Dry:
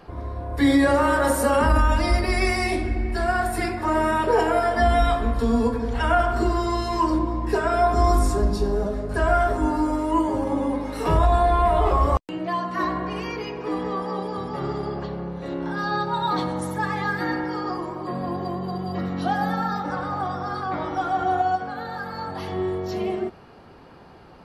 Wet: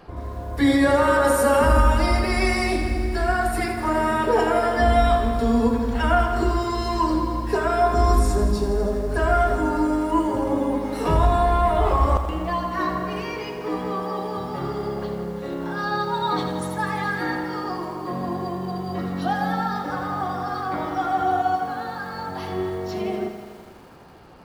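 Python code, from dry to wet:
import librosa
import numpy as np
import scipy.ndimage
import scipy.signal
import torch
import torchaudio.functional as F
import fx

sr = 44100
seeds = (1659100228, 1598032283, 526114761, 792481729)

y = fx.echo_crushed(x, sr, ms=82, feedback_pct=80, bits=8, wet_db=-10.5)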